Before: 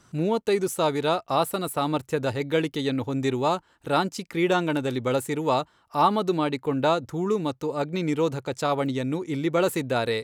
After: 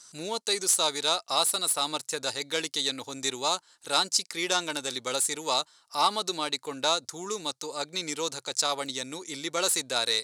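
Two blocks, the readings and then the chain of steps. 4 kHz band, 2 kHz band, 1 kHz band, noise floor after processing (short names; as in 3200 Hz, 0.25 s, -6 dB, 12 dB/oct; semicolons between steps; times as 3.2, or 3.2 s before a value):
+8.5 dB, -1.5 dB, -4.5 dB, -64 dBFS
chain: tracing distortion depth 0.024 ms; HPF 1300 Hz 6 dB/oct; band shelf 6400 Hz +14 dB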